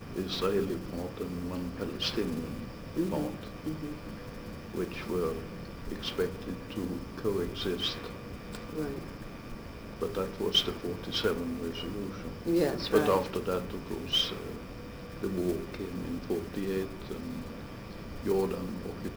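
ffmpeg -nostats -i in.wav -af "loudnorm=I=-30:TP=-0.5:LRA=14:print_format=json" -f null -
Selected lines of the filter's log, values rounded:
"input_i" : "-33.8",
"input_tp" : "-12.0",
"input_lra" : "5.7",
"input_thresh" : "-43.9",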